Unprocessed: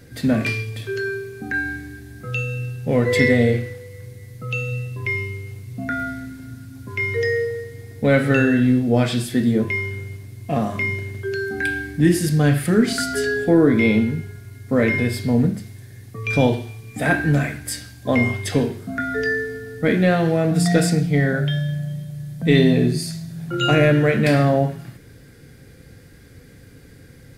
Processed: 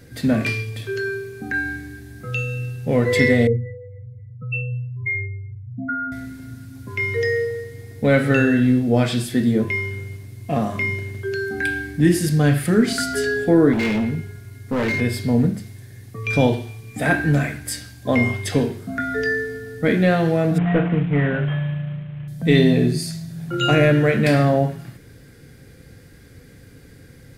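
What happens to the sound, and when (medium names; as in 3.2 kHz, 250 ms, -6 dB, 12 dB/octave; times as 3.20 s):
3.47–6.12 s: spectral contrast enhancement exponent 2.3
13.73–15.01 s: overload inside the chain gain 18 dB
20.58–22.28 s: CVSD coder 16 kbps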